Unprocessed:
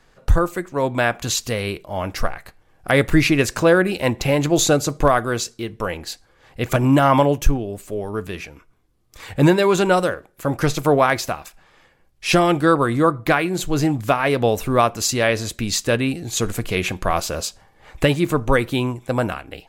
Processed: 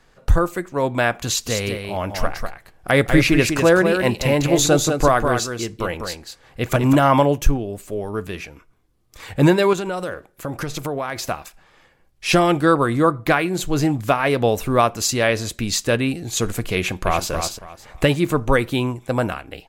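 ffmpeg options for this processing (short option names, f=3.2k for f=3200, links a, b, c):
-filter_complex "[0:a]asplit=3[a][b][c];[a]afade=t=out:st=1.46:d=0.02[d];[b]aecho=1:1:198:0.501,afade=t=in:st=1.46:d=0.02,afade=t=out:st=6.94:d=0.02[e];[c]afade=t=in:st=6.94:d=0.02[f];[d][e][f]amix=inputs=3:normalize=0,asettb=1/sr,asplit=3[g][h][i];[g]atrim=end=9.734[j];[h]atrim=start=9.73:end=11.29,asetpts=PTS-STARTPTS,afade=t=in:d=0.004:c=qsin,afade=t=out:st=1.556:d=0.004:c=qsin,acompressor=threshold=-23dB:ratio=4:attack=3.2:release=140:knee=1:detection=peak[k];[i]atrim=start=11.286[l];[j][k]acrossfade=d=0.004:c1=hsin:c2=qsin[m];[m][l]acrossfade=d=0.004:c1=qsin:c2=hsin,asplit=2[n][o];[o]afade=t=in:st=16.78:d=0.01,afade=t=out:st=17.3:d=0.01,aecho=0:1:280|560|840:0.446684|0.111671|0.0279177[p];[n][p]amix=inputs=2:normalize=0"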